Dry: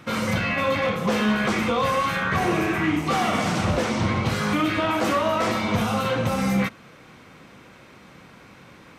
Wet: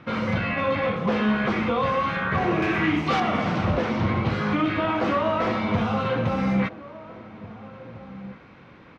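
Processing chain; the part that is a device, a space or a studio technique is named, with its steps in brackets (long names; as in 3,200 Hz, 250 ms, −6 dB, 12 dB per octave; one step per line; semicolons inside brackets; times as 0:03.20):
0:02.62–0:03.20: high-shelf EQ 2,700 Hz +11 dB
shout across a valley (high-frequency loss of the air 250 metres; slap from a distant wall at 290 metres, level −16 dB)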